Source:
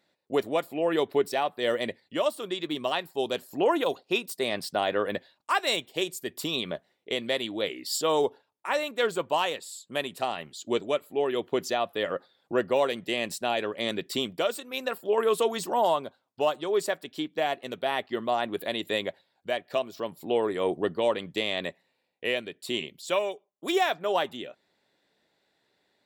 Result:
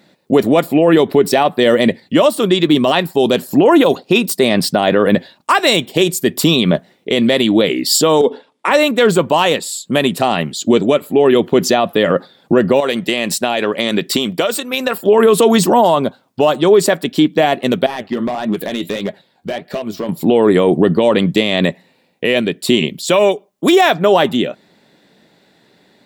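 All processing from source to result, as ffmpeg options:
-filter_complex "[0:a]asettb=1/sr,asplit=3[a][b][c];[a]atrim=end=8.214[d];[b]atrim=start=8.21:end=8.71,asetpts=PTS-STARTPTS,afade=t=in:d=0.004:c=qsin,afade=t=out:st=0.496:d=0.004:c=qsin,highpass=210,equalizer=f=250:t=q:w=4:g=7,equalizer=f=480:t=q:w=4:g=8,equalizer=f=1.1k:t=q:w=4:g=3,equalizer=f=2.1k:t=q:w=4:g=5,equalizer=f=3.4k:t=q:w=4:g=7,equalizer=f=6.4k:t=q:w=4:g=-4,lowpass=f=9.5k:w=0.5412,lowpass=f=9.5k:w=1.3066,acompressor=threshold=-27dB:ratio=6:attack=3.2:release=140:knee=1:detection=peak[e];[c]atrim=start=8.706[f];[d][e]acrossfade=d=0.004:c1=hsin:c2=qsin[g];[g][f]acrossfade=d=0.004:c1=qsin:c2=hsin,asettb=1/sr,asplit=3[h][i][j];[h]atrim=end=12.804[k];[i]atrim=start=12.8:end=15.06,asetpts=PTS-STARTPTS,afade=t=in:d=0.004:c=qsin,afade=t=out:st=2.256:d=0.004:c=qsin,lowshelf=f=350:g=-9.5,acompressor=threshold=-30dB:ratio=6:attack=3.2:release=140:knee=1:detection=peak[l];[j]atrim=start=15.056[m];[k][l]acrossfade=d=0.004:c1=hsin:c2=qsin[n];[n][m]acrossfade=d=0.004:c1=qsin:c2=hsin,asettb=1/sr,asplit=3[o][p][q];[o]atrim=end=17.864[r];[p]atrim=start=17.86:end=20.09,asetpts=PTS-STARTPTS,afade=t=in:d=0.004:c=qsin,afade=t=out:st=2.226:d=0.004:c=qsin,acompressor=threshold=-33dB:ratio=3:attack=3.2:release=140:knee=1:detection=peak,flanger=delay=4.7:depth=7.8:regen=59:speed=1.6:shape=sinusoidal,volume=34.5dB,asoftclip=hard,volume=-34.5dB[s];[q]atrim=start=20.086[t];[r][s]acrossfade=d=0.004:c1=hsin:c2=qsin[u];[u][t]acrossfade=d=0.004:c1=qsin:c2=hsin,equalizer=f=190:t=o:w=1.5:g=10.5,alimiter=level_in=18.5dB:limit=-1dB:release=50:level=0:latency=1,volume=-1dB"

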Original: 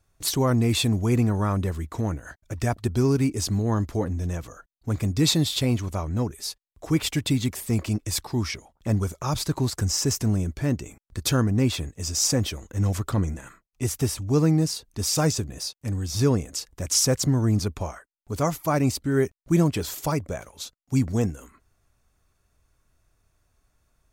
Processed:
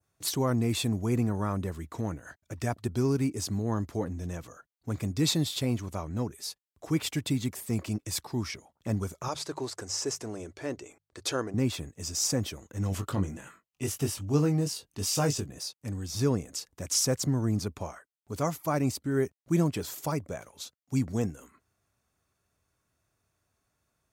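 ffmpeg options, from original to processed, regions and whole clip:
-filter_complex "[0:a]asettb=1/sr,asplit=3[a][b][c];[a]atrim=end=9.284[d];[b]atrim=start=9.28:end=11.54,asetpts=PTS-STARTPTS,afade=t=in:d=0.004:c=qsin,afade=t=out:st=2.256:d=0.004:c=qsin,lowpass=8.5k,lowshelf=f=280:t=q:w=1.5:g=-11,bandreject=f=50:t=h:w=6,bandreject=f=100:t=h:w=6,bandreject=f=150:t=h:w=6[e];[c]atrim=start=11.536[f];[d][e]acrossfade=d=0.004:c1=hsin:c2=qsin[g];[g][f]acrossfade=d=0.004:c1=qsin:c2=hsin,asettb=1/sr,asplit=3[h][i][j];[h]atrim=end=12.894[k];[i]atrim=start=12.89:end=15.48,asetpts=PTS-STARTPTS,afade=t=in:d=0.004:c=qsin,afade=t=out:st=2.586:d=0.004:c=qsin,equalizer=f=2.9k:t=o:w=0.24:g=8,asplit=2[l][m];[m]adelay=21,volume=-6dB[n];[l][n]amix=inputs=2:normalize=0,atrim=end_sample=114219[o];[j]atrim=start=15.476[p];[k][o]acrossfade=d=0.004:c1=hsin:c2=qsin[q];[q][p]acrossfade=d=0.004:c1=qsin:c2=hsin,highpass=99,adynamicequalizer=threshold=0.00794:dfrequency=3300:dqfactor=0.8:tfrequency=3300:tqfactor=0.8:attack=5:release=100:ratio=0.375:range=2:mode=cutabove:tftype=bell,volume=-5dB"

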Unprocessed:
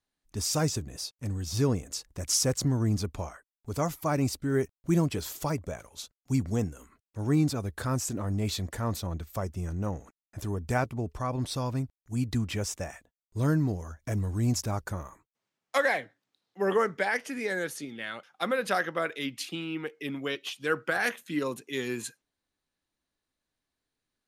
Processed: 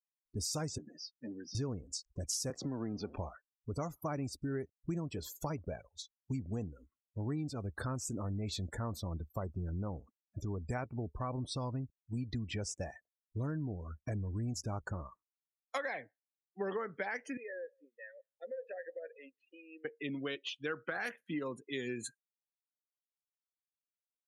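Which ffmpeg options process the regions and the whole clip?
-filter_complex "[0:a]asettb=1/sr,asplit=3[a][b][c];[a]atrim=end=0.784[d];[b]atrim=start=0.78:end=1.55,asetpts=PTS-STARTPTS,afade=t=in:d=0.004:c=qsin,afade=t=out:st=0.766:d=0.004:c=qsin,volume=29dB,asoftclip=hard,volume=-29dB,highpass=f=210:w=0.5412,highpass=f=210:w=1.3066,equalizer=f=430:t=q:w=4:g=-4,equalizer=f=1.6k:t=q:w=4:g=5,equalizer=f=4.1k:t=q:w=4:g=-10,lowpass=f=5.4k:w=0.5412,lowpass=f=5.4k:w=1.3066,asplit=2[e][f];[f]adelay=13,volume=-7dB[g];[e][g]amix=inputs=2:normalize=0,atrim=end_sample=33957[h];[c]atrim=start=1.546[i];[d][h]acrossfade=d=0.004:c1=hsin:c2=qsin[j];[j][i]acrossfade=d=0.004:c1=qsin:c2=hsin,asettb=1/sr,asplit=3[k][l][m];[k]atrim=end=2.504[n];[l]atrim=start=2.5:end=3.18,asetpts=PTS-STARTPTS,afade=t=in:d=0.004:c=qsin,afade=t=out:st=0.676:d=0.004:c=qsin,aeval=exprs='val(0)+0.5*0.0188*sgn(val(0))':c=same,acrossover=split=180 4600:gain=0.112 1 0.178[o][p][q];[o][p][q]amix=inputs=3:normalize=0[r];[m]atrim=start=3.176[s];[n][r]acrossfade=d=0.004:c1=hsin:c2=qsin[t];[t][s]acrossfade=d=0.004:c1=qsin:c2=hsin,asettb=1/sr,asplit=3[u][v][w];[u]atrim=end=17.374[x];[v]atrim=start=17.37:end=19.85,asetpts=PTS-STARTPTS,afade=t=in:d=0.004:c=qsin,afade=t=out:st=2.476:d=0.004:c=qsin,asplit=3[y][z][aa];[y]bandpass=f=530:t=q:w=8,volume=0dB[ab];[z]bandpass=f=1.84k:t=q:w=8,volume=-6dB[ac];[aa]bandpass=f=2.48k:t=q:w=8,volume=-9dB[ad];[ab][ac][ad]amix=inputs=3:normalize=0,acompressor=threshold=-37dB:ratio=4:attack=3.2:release=140:knee=1:detection=peak,aecho=1:1:181:0.0794,atrim=end_sample=109368[ae];[w]atrim=start=19.846[af];[x][ae]acrossfade=d=0.004:c1=hsin:c2=qsin[ag];[ag][af]acrossfade=d=0.004:c1=qsin:c2=hsin,afftdn=nr=35:nf=-41,acompressor=threshold=-32dB:ratio=6,volume=-2.5dB"

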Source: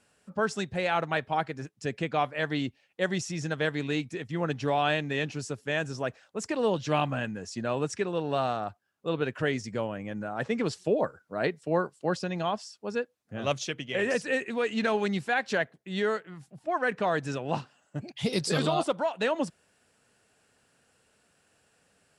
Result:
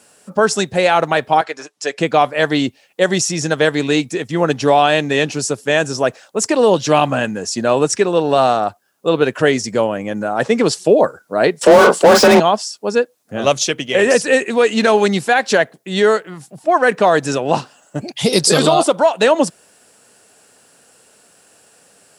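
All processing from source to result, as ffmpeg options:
-filter_complex "[0:a]asettb=1/sr,asplit=3[a][b][c];[a]atrim=end=1.414[d];[b]atrim=start=1.41:end=1.98,asetpts=PTS-STARTPTS,afade=t=in:d=0.004:c=qsin,afade=t=out:st=0.566:d=0.004:c=qsin,highpass=610,lowpass=7.2k,aecho=1:1:6.8:0.53,atrim=end_sample=25137[e];[c]atrim=start=1.976[f];[d][e]acrossfade=d=0.004:c1=hsin:c2=qsin[g];[g][f]acrossfade=d=0.004:c1=qsin:c2=hsin,asettb=1/sr,asplit=3[h][i][j];[h]atrim=end=11.614[k];[i]atrim=start=11.61:end=12.4,asetpts=PTS-STARTPTS,afade=t=in:d=0.004:c=qsin,afade=t=out:st=0.786:d=0.004:c=qsin,afreqshift=31,asplit=2[l][m];[m]adelay=41,volume=-10dB[n];[l][n]amix=inputs=2:normalize=0,atrim=end_sample=34839,asplit=2[o][p];[p]highpass=f=720:p=1,volume=37dB,asoftclip=type=tanh:threshold=-13dB[q];[o][q]amix=inputs=2:normalize=0,lowpass=f=1.2k:p=1,volume=-6dB[r];[j]atrim=start=12.396[s];[k][r]acrossfade=d=0.004:c1=hsin:c2=qsin[t];[t][s]acrossfade=d=0.004:c1=qsin:c2=hsin,highpass=f=710:p=1,equalizer=f=2.1k:w=0.45:g=-10.5,alimiter=level_in=24.5dB:limit=-1dB:release=50:level=0:latency=1,volume=-1dB"

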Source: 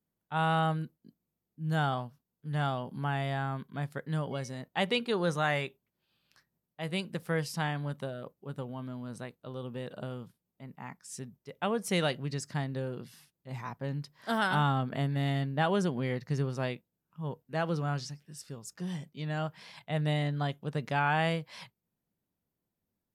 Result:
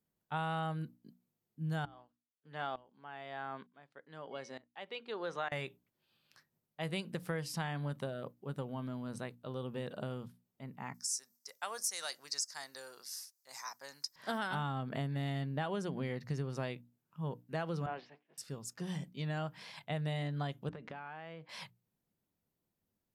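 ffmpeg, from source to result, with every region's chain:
-filter_complex "[0:a]asettb=1/sr,asplit=3[a][b][c];[a]atrim=end=1.854[d];[b]atrim=start=1.85:end=5.52,asetpts=PTS-STARTPTS,afade=t=in:d=0.004:c=qsin,afade=t=out:st=3.666:d=0.004:c=qsin,agate=range=-8dB:threshold=-53dB:ratio=16:release=100:detection=peak,highpass=360,lowpass=4.2k,aeval=exprs='val(0)*pow(10,-22*if(lt(mod(-1.1*n/s,1),2*abs(-1.1)/1000),1-mod(-1.1*n/s,1)/(2*abs(-1.1)/1000),(mod(-1.1*n/s,1)-2*abs(-1.1)/1000)/(1-2*abs(-1.1)/1000))/20)':c=same[e];[c]atrim=start=5.516[f];[d][e]acrossfade=d=0.004:c1=hsin:c2=qsin[g];[g][f]acrossfade=d=0.004:c1=qsin:c2=hsin,asettb=1/sr,asplit=3[h][i][j];[h]atrim=end=10.944[k];[i]atrim=start=10.94:end=14.16,asetpts=PTS-STARTPTS,afade=t=in:d=0.004:c=qsin,afade=t=out:st=3.216:d=0.004:c=qsin,highpass=1.1k,highshelf=f=4.1k:t=q:w=3:g=10.5[l];[j]atrim=start=14.156[m];[k][l]acrossfade=d=0.004:c1=hsin:c2=qsin[n];[n][m]acrossfade=d=0.004:c1=qsin:c2=hsin,asettb=1/sr,asplit=3[o][p][q];[o]atrim=end=17.864[r];[p]atrim=start=17.86:end=18.38,asetpts=PTS-STARTPTS,afade=t=in:d=0.004:c=qsin,afade=t=out:st=0.516:d=0.004:c=qsin,aeval=exprs='val(0)+0.5*0.00531*sgn(val(0))':c=same,agate=range=-33dB:threshold=-36dB:ratio=3:release=100:detection=peak,highpass=f=280:w=0.5412,highpass=f=280:w=1.3066,equalizer=f=300:t=q:w=4:g=-6,equalizer=f=670:t=q:w=4:g=3,equalizer=f=1.3k:t=q:w=4:g=-7,lowpass=f=2.8k:w=0.5412,lowpass=f=2.8k:w=1.3066[s];[q]atrim=start=18.376[t];[r][s]acrossfade=d=0.004:c1=hsin:c2=qsin[u];[u][t]acrossfade=d=0.004:c1=qsin:c2=hsin,asettb=1/sr,asplit=3[v][w][x];[v]atrim=end=20.694[y];[w]atrim=start=20.69:end=21.49,asetpts=PTS-STARTPTS,afade=t=in:d=0.004:c=qsin,afade=t=out:st=0.796:d=0.004:c=qsin,highpass=200,lowpass=2.7k,acompressor=threshold=-42dB:ratio=10:attack=3.2:release=140:knee=1:detection=peak[z];[x]atrim=start=21.486[aa];[y][z]acrossfade=d=0.004:c1=hsin:c2=qsin[ab];[ab][aa]acrossfade=d=0.004:c1=qsin:c2=hsin,bandreject=f=60:t=h:w=6,bandreject=f=120:t=h:w=6,bandreject=f=180:t=h:w=6,bandreject=f=240:t=h:w=6,bandreject=f=300:t=h:w=6,acompressor=threshold=-34dB:ratio=6"

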